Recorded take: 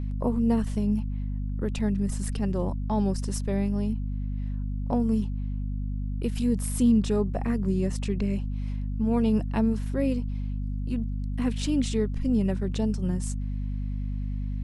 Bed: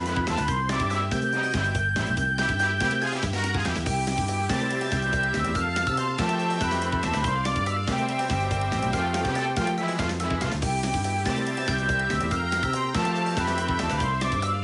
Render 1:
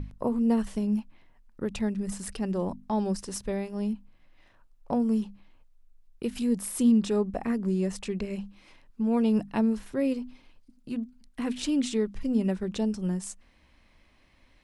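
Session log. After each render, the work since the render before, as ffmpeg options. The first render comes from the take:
-af "bandreject=f=50:t=h:w=6,bandreject=f=100:t=h:w=6,bandreject=f=150:t=h:w=6,bandreject=f=200:t=h:w=6,bandreject=f=250:t=h:w=6"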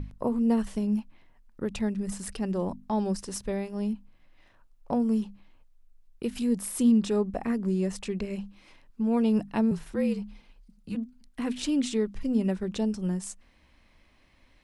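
-filter_complex "[0:a]asettb=1/sr,asplit=3[s0][s1][s2];[s0]atrim=end=9.714[s3];[s1]atrim=start=9.71:end=10.95,asetpts=PTS-STARTPTS,afade=t=in:d=0.004:c=qsin,afade=t=out:st=1.236:d=0.004:c=qsin,afreqshift=-42[s4];[s2]atrim=start=10.946[s5];[s3][s4]acrossfade=d=0.004:c1=hsin:c2=qsin[s6];[s6][s5]acrossfade=d=0.004:c1=qsin:c2=hsin"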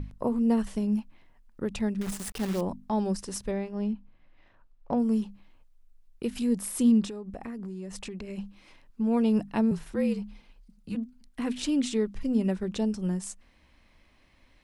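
-filter_complex "[0:a]asettb=1/sr,asplit=3[s0][s1][s2];[s0]atrim=end=2.014[s3];[s1]atrim=start=2.01:end=2.61,asetpts=PTS-STARTPTS,afade=t=in:d=0.004:c=qsin,afade=t=out:st=0.596:d=0.004:c=qsin,acrusher=bits=7:dc=4:mix=0:aa=0.000001[s4];[s2]atrim=start=2.606[s5];[s3][s4]acrossfade=d=0.004:c1=hsin:c2=qsin[s6];[s6][s5]acrossfade=d=0.004:c1=qsin:c2=hsin,asettb=1/sr,asplit=3[s7][s8][s9];[s7]atrim=end=3.514[s10];[s8]atrim=start=3.51:end=4.98,asetpts=PTS-STARTPTS,afade=t=in:d=0.004:c=qsin,afade=t=out:st=1.466:d=0.004:c=qsin,adynamicsmooth=sensitivity=4:basefreq=4300[s11];[s9]atrim=start=4.976[s12];[s10][s11]acrossfade=d=0.004:c1=hsin:c2=qsin[s13];[s13][s12]acrossfade=d=0.004:c1=qsin:c2=hsin,asettb=1/sr,asplit=3[s14][s15][s16];[s14]atrim=end=7.054[s17];[s15]atrim=start=7.05:end=8.38,asetpts=PTS-STARTPTS,afade=t=in:d=0.004:c=qsin,afade=t=out:st=1.326:d=0.004:c=qsin,acompressor=threshold=0.02:ratio=12:attack=3.2:release=140:knee=1:detection=peak[s18];[s16]atrim=start=8.376[s19];[s17][s18]acrossfade=d=0.004:c1=hsin:c2=qsin[s20];[s20][s19]acrossfade=d=0.004:c1=qsin:c2=hsin"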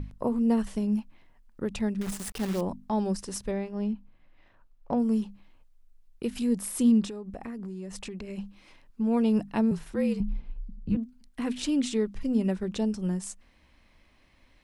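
-filter_complex "[0:a]asettb=1/sr,asplit=3[s0][s1][s2];[s0]atrim=end=10.204[s3];[s1]atrim=start=10.2:end=10.97,asetpts=PTS-STARTPTS,afade=t=in:d=0.004:c=qsin,afade=t=out:st=0.766:d=0.004:c=qsin,aemphasis=mode=reproduction:type=riaa[s4];[s2]atrim=start=10.966[s5];[s3][s4]acrossfade=d=0.004:c1=hsin:c2=qsin[s6];[s6][s5]acrossfade=d=0.004:c1=qsin:c2=hsin"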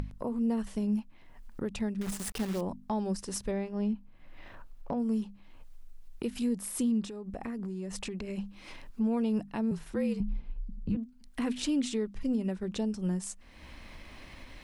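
-af "acompressor=mode=upward:threshold=0.02:ratio=2.5,alimiter=limit=0.075:level=0:latency=1:release=415"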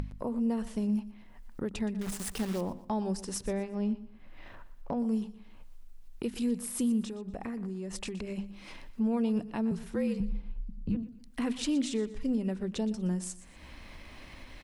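-af "aecho=1:1:120|240|360:0.158|0.0491|0.0152"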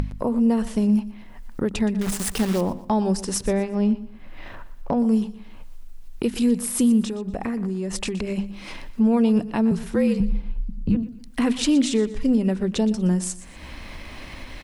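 -af "volume=3.35"

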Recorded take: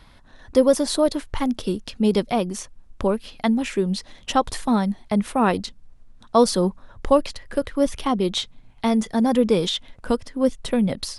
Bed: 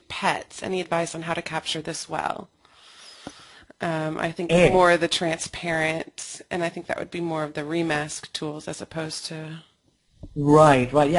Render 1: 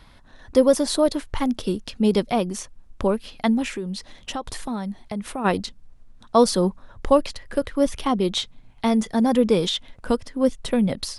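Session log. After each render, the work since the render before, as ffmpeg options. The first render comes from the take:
-filter_complex "[0:a]asplit=3[s0][s1][s2];[s0]afade=t=out:st=3.72:d=0.02[s3];[s1]acompressor=threshold=0.0398:ratio=3:attack=3.2:release=140:knee=1:detection=peak,afade=t=in:st=3.72:d=0.02,afade=t=out:st=5.44:d=0.02[s4];[s2]afade=t=in:st=5.44:d=0.02[s5];[s3][s4][s5]amix=inputs=3:normalize=0"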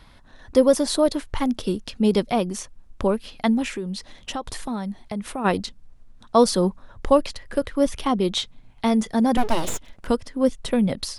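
-filter_complex "[0:a]asettb=1/sr,asplit=3[s0][s1][s2];[s0]atrim=end=9.374[s3];[s1]atrim=start=9.37:end=10.08,asetpts=PTS-STARTPTS,afade=t=in:d=0.004:c=qsin,afade=t=out:st=0.706:d=0.004:c=qsin,aeval=exprs='abs(val(0))':c=same[s4];[s2]atrim=start=10.076[s5];[s3][s4]acrossfade=d=0.004:c1=hsin:c2=qsin[s6];[s6][s5]acrossfade=d=0.004:c1=qsin:c2=hsin"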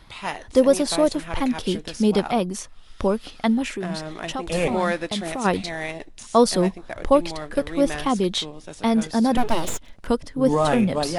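-filter_complex "[1:a]volume=0.473[s0];[0:a][s0]amix=inputs=2:normalize=0"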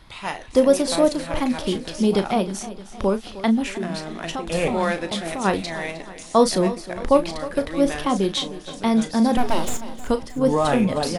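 -filter_complex "[0:a]asplit=2[s0][s1];[s1]adelay=36,volume=0.282[s2];[s0][s2]amix=inputs=2:normalize=0,aecho=1:1:310|620|930|1240|1550:0.168|0.0907|0.049|0.0264|0.0143"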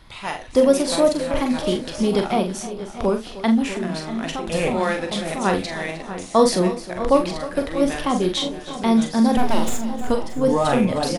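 -filter_complex "[0:a]asplit=2[s0][s1];[s1]adelay=44,volume=0.447[s2];[s0][s2]amix=inputs=2:normalize=0,asplit=2[s3][s4];[s4]adelay=641.4,volume=0.251,highshelf=f=4000:g=-14.4[s5];[s3][s5]amix=inputs=2:normalize=0"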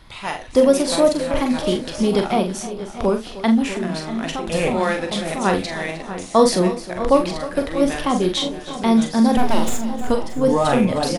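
-af "volume=1.19,alimiter=limit=0.708:level=0:latency=1"

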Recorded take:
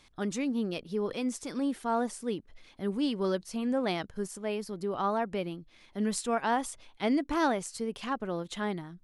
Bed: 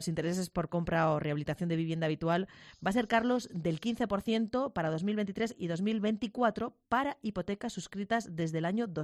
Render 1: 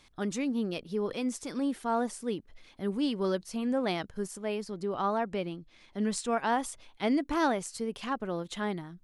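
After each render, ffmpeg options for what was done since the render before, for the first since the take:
-filter_complex "[0:a]asettb=1/sr,asplit=3[s0][s1][s2];[s0]atrim=end=4.614[s3];[s1]atrim=start=4.61:end=6.32,asetpts=PTS-STARTPTS,afade=t=in:d=0.004:c=qsin,afade=t=out:st=1.706:d=0.004:c=qsin,lowpass=f=9500:w=0.5412,lowpass=f=9500:w=1.3066[s4];[s2]atrim=start=6.316[s5];[s3][s4]acrossfade=d=0.004:c1=hsin:c2=qsin[s6];[s6][s5]acrossfade=d=0.004:c1=qsin:c2=hsin"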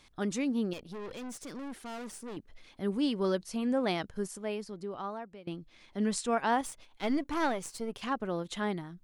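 -filter_complex "[0:a]asettb=1/sr,asplit=3[s0][s1][s2];[s0]atrim=end=0.734[s3];[s1]atrim=start=0.73:end=2.37,asetpts=PTS-STARTPTS,afade=t=in:d=0.004:c=qsin,afade=t=out:st=1.636:d=0.004:c=qsin,aeval=exprs='(tanh(89.1*val(0)+0.5)-tanh(0.5))/89.1':c=same[s4];[s2]atrim=start=2.366[s5];[s3][s4]acrossfade=d=0.004:c1=hsin:c2=qsin[s6];[s6][s5]acrossfade=d=0.004:c1=qsin:c2=hsin,asettb=1/sr,asplit=3[s7][s8][s9];[s7]atrim=end=6.614[s10];[s8]atrim=start=6.61:end=8.02,asetpts=PTS-STARTPTS,afade=t=in:d=0.004:c=qsin,afade=t=out:st=1.406:d=0.004:c=qsin,aeval=exprs='if(lt(val(0),0),0.447*val(0),val(0))':c=same[s11];[s9]atrim=start=8.016[s12];[s10][s11]acrossfade=d=0.004:c1=hsin:c2=qsin[s13];[s13][s12]acrossfade=d=0.004:c1=qsin:c2=hsin,asplit=2[s14][s15];[s14]atrim=end=5.47,asetpts=PTS-STARTPTS,afade=t=out:st=4.18:d=1.29:silence=0.0841395[s16];[s15]atrim=start=5.47,asetpts=PTS-STARTPTS,afade=t=in:d=0.004:c=hsin:silence=0.0841395[s17];[s16][s17]concat=n=2:v=0:a=1"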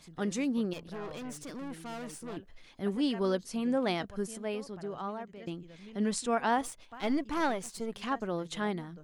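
-filter_complex "[1:a]volume=0.119[s0];[0:a][s0]amix=inputs=2:normalize=0"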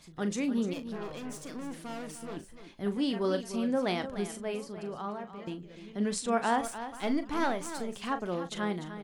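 -filter_complex "[0:a]asplit=2[s0][s1];[s1]adelay=39,volume=0.282[s2];[s0][s2]amix=inputs=2:normalize=0,aecho=1:1:298:0.266"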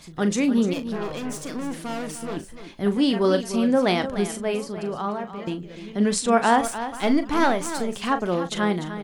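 -af "volume=2.99"

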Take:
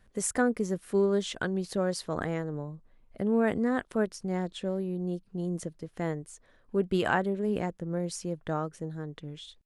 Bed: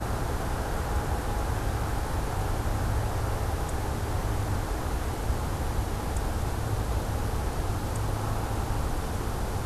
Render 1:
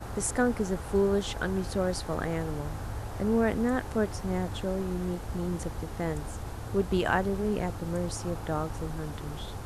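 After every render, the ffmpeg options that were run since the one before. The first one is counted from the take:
-filter_complex "[1:a]volume=0.376[s0];[0:a][s0]amix=inputs=2:normalize=0"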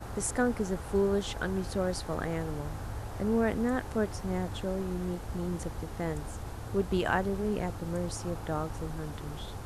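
-af "volume=0.794"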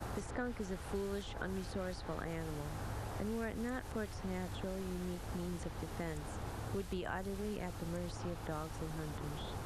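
-filter_complex "[0:a]acrossover=split=93|1900|4400[s0][s1][s2][s3];[s0]acompressor=threshold=0.00447:ratio=4[s4];[s1]acompressor=threshold=0.01:ratio=4[s5];[s2]acompressor=threshold=0.00447:ratio=4[s6];[s3]acompressor=threshold=0.00141:ratio=4[s7];[s4][s5][s6][s7]amix=inputs=4:normalize=0,acrossover=split=1700[s8][s9];[s9]alimiter=level_in=9.44:limit=0.0631:level=0:latency=1:release=67,volume=0.106[s10];[s8][s10]amix=inputs=2:normalize=0"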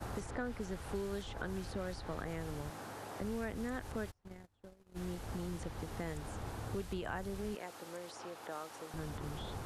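-filter_complex "[0:a]asettb=1/sr,asplit=3[s0][s1][s2];[s0]atrim=end=2.704[s3];[s1]atrim=start=2.7:end=3.21,asetpts=PTS-STARTPTS,afade=t=in:d=0.004:c=qsin,afade=t=out:st=0.506:d=0.004:c=qsin,highpass=220[s4];[s2]atrim=start=3.206[s5];[s3][s4]acrossfade=d=0.004:c1=hsin:c2=qsin[s6];[s6][s5]acrossfade=d=0.004:c1=qsin:c2=hsin,asplit=3[s7][s8][s9];[s7]afade=t=out:st=4.1:d=0.02[s10];[s8]agate=range=0.02:threshold=0.0126:ratio=16:release=100:detection=peak,afade=t=in:st=4.1:d=0.02,afade=t=out:st=4.95:d=0.02[s11];[s9]afade=t=in:st=4.95:d=0.02[s12];[s10][s11][s12]amix=inputs=3:normalize=0,asettb=1/sr,asplit=3[s13][s14][s15];[s13]atrim=end=7.554[s16];[s14]atrim=start=7.55:end=8.94,asetpts=PTS-STARTPTS,afade=t=in:d=0.004:c=qsin,afade=t=out:st=1.386:d=0.004:c=qsin,highpass=400[s17];[s15]atrim=start=8.936[s18];[s16][s17]acrossfade=d=0.004:c1=hsin:c2=qsin[s19];[s19][s18]acrossfade=d=0.004:c1=qsin:c2=hsin"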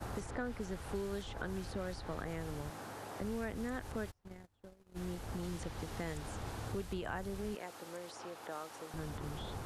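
-filter_complex "[0:a]asettb=1/sr,asplit=3[s0][s1][s2];[s0]atrim=end=5.434[s3];[s1]atrim=start=5.43:end=6.72,asetpts=PTS-STARTPTS,afade=t=in:d=0.004:c=qsin,afade=t=out:st=1.286:d=0.004:c=qsin,equalizer=f=4300:w=0.49:g=3.5[s4];[s2]atrim=start=6.716[s5];[s3][s4]acrossfade=d=0.004:c1=hsin:c2=qsin[s6];[s6][s5]acrossfade=d=0.004:c1=qsin:c2=hsin"

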